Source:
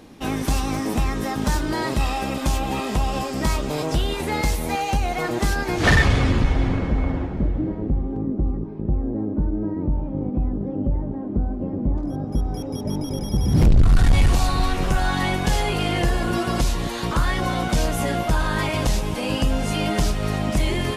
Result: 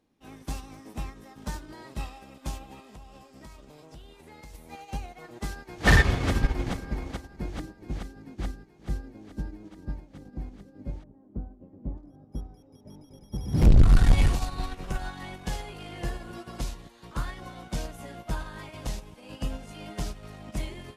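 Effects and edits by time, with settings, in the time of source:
0:02.91–0:04.55: downward compressor 10 to 1, threshold −21 dBFS
0:05.37–0:05.87: delay throw 430 ms, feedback 85%, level −2.5 dB
whole clip: expander for the loud parts 2.5 to 1, over −28 dBFS

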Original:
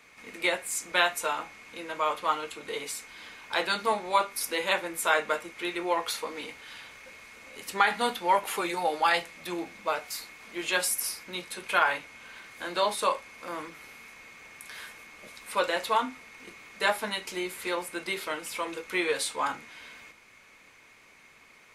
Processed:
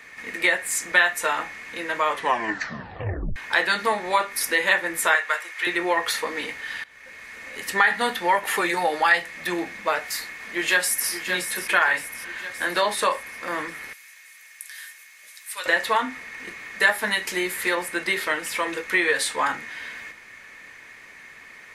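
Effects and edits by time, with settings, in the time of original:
0:02.11: tape stop 1.25 s
0:05.15–0:05.67: high-pass filter 880 Hz
0:06.84–0:07.70: fade in equal-power, from −19.5 dB
0:09.99–0:11.10: delay throw 570 ms, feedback 55%, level −10 dB
0:13.93–0:15.66: first difference
0:16.79–0:17.75: high-shelf EQ 11,000 Hz +8.5 dB
whole clip: parametric band 1,800 Hz +15 dB 0.25 octaves; downward compressor 2 to 1, threshold −26 dBFS; level +6.5 dB

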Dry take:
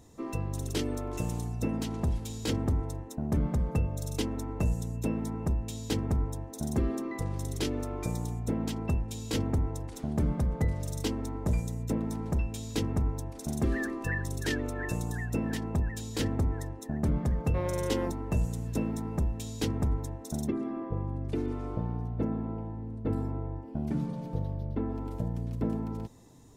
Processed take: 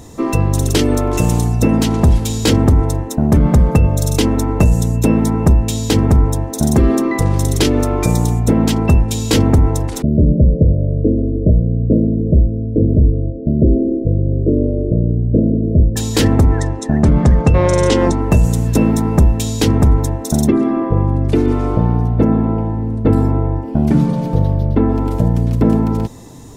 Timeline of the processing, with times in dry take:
0:10.02–0:15.96: Chebyshev low-pass filter 640 Hz, order 8
0:16.47–0:18.21: low-pass filter 8,500 Hz 24 dB per octave
whole clip: boost into a limiter +21 dB; level −2 dB

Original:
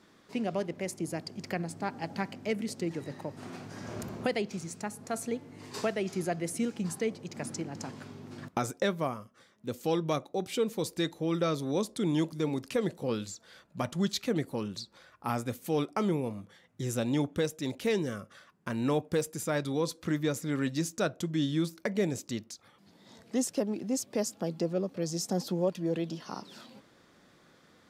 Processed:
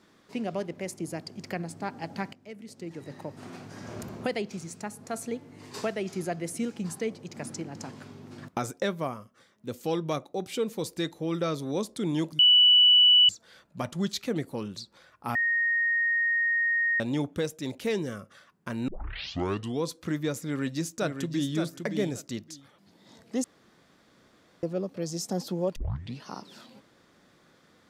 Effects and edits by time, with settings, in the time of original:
0:02.33–0:03.20: fade in quadratic, from −13.5 dB
0:12.39–0:13.29: beep over 2,960 Hz −14.5 dBFS
0:15.35–0:17.00: beep over 1,860 Hz −22.5 dBFS
0:18.88: tape start 0.94 s
0:20.44–0:21.52: delay throw 570 ms, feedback 15%, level −6.5 dB
0:23.44–0:24.63: fill with room tone
0:25.76: tape start 0.48 s

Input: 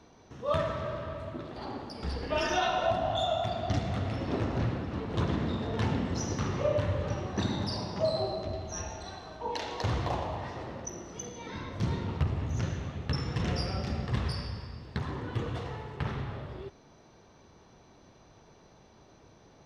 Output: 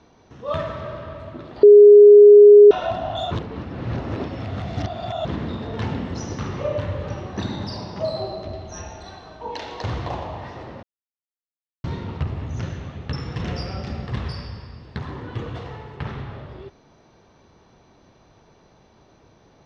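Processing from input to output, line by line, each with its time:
0:01.63–0:02.71: beep over 413 Hz −7 dBFS
0:03.31–0:05.25: reverse
0:10.83–0:11.84: silence
whole clip: low-pass filter 5,600 Hz 12 dB per octave; level +3 dB

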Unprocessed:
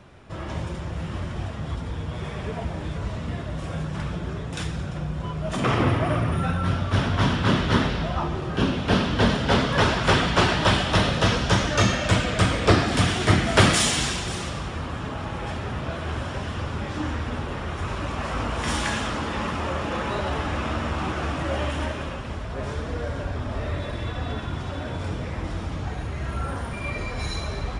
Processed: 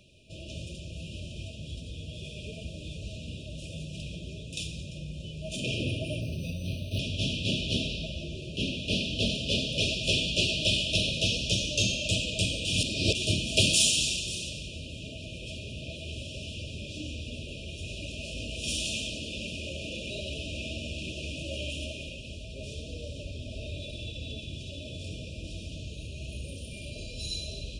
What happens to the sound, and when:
0:06.21–0:06.99: linearly interpolated sample-rate reduction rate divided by 6×
0:12.65–0:13.15: reverse
whole clip: brick-wall band-stop 660–2,400 Hz; low shelf with overshoot 740 Hz −9.5 dB, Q 1.5

